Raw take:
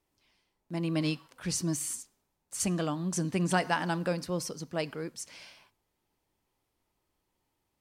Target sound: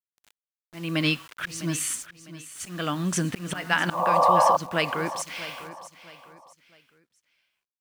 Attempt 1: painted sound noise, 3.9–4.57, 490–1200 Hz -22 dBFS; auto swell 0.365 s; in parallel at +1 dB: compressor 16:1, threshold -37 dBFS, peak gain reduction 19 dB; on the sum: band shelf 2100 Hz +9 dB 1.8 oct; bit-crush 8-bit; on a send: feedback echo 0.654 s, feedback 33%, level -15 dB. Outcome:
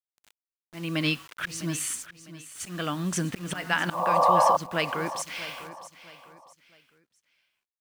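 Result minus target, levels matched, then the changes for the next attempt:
compressor: peak gain reduction +7 dB
change: compressor 16:1, threshold -29.5 dBFS, peak gain reduction 12 dB

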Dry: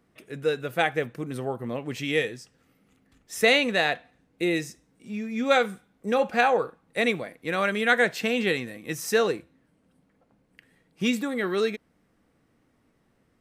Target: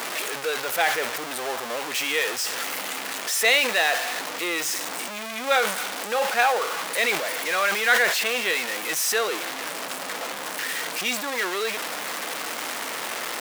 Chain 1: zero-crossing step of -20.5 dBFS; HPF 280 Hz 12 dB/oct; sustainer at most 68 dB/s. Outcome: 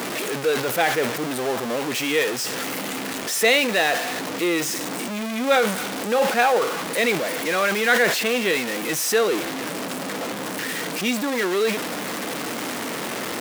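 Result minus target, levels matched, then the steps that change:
250 Hz band +10.5 dB
change: HPF 680 Hz 12 dB/oct

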